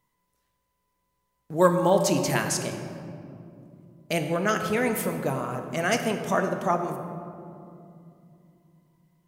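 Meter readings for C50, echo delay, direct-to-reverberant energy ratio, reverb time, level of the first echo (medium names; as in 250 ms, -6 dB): 7.0 dB, no echo, 5.0 dB, 2.6 s, no echo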